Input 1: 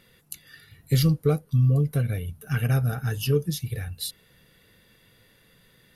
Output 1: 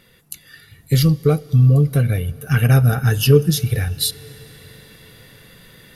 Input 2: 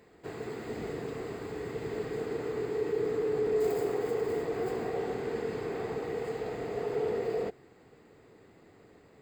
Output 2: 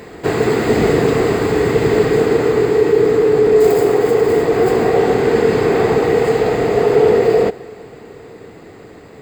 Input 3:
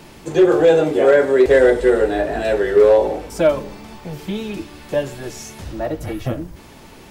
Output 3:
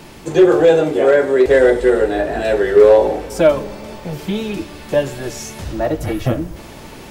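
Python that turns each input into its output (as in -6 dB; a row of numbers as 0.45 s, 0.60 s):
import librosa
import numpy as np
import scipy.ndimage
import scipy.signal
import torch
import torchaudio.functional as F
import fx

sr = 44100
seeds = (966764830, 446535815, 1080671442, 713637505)

y = fx.rider(x, sr, range_db=4, speed_s=2.0)
y = fx.rev_plate(y, sr, seeds[0], rt60_s=4.8, hf_ratio=0.95, predelay_ms=0, drr_db=20.0)
y = librosa.util.normalize(y) * 10.0 ** (-2 / 20.0)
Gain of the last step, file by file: +9.0 dB, +20.0 dB, +2.0 dB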